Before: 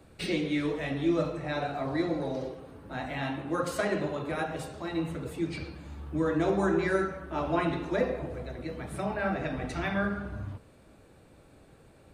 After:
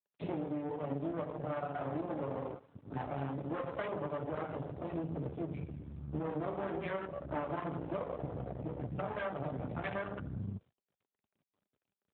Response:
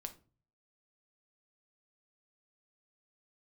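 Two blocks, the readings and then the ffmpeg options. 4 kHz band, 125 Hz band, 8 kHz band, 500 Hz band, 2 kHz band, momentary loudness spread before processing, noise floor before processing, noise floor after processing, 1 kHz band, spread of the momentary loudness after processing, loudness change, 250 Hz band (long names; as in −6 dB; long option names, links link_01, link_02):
−16.0 dB, −4.5 dB, below −30 dB, −7.5 dB, −12.0 dB, 11 LU, −57 dBFS, below −85 dBFS, −6.5 dB, 4 LU, −8.0 dB, −9.0 dB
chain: -filter_complex "[0:a]acrossover=split=100|400|2800[link_01][link_02][link_03][link_04];[link_01]alimiter=level_in=19.5dB:limit=-24dB:level=0:latency=1,volume=-19.5dB[link_05];[link_05][link_02][link_03][link_04]amix=inputs=4:normalize=0,agate=range=-33dB:threshold=-46dB:ratio=3:detection=peak,afwtdn=0.0224,asubboost=boost=7.5:cutoff=76,aecho=1:1:6.9:0.45,adynamicequalizer=threshold=0.00794:dfrequency=550:dqfactor=2.4:tfrequency=550:tqfactor=2.4:attack=5:release=100:ratio=0.375:range=2.5:mode=boostabove:tftype=bell,highpass=frequency=51:width=0.5412,highpass=frequency=51:width=1.3066,acompressor=threshold=-34dB:ratio=10,aeval=exprs='max(val(0),0)':channel_layout=same,volume=5dB" -ar 8000 -c:a libopencore_amrnb -b:a 12200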